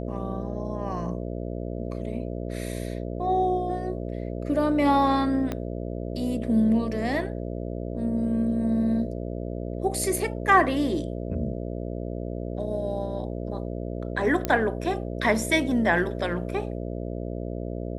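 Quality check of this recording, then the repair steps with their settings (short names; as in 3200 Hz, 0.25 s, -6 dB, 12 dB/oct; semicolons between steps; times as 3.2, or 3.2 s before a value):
buzz 60 Hz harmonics 11 -32 dBFS
5.52 pop -16 dBFS
14.45 pop -10 dBFS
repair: de-click; de-hum 60 Hz, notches 11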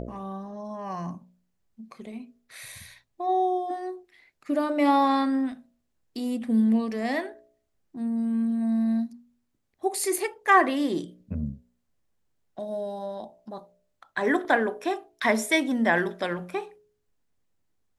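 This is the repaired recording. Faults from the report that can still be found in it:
5.52 pop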